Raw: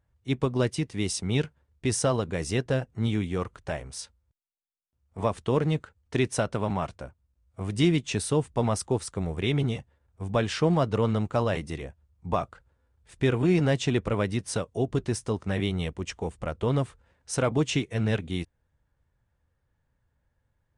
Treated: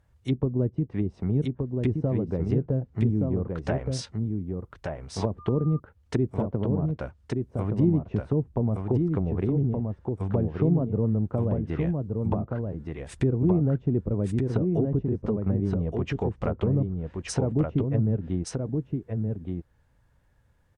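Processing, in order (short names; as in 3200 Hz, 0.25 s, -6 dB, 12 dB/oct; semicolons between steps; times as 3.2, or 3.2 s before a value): treble ducked by the level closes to 350 Hz, closed at -24 dBFS; in parallel at +2.5 dB: compressor, threshold -38 dBFS, peak gain reduction 17.5 dB; on the sum: echo 1.172 s -4 dB; 5.38–5.78 whine 1200 Hz -44 dBFS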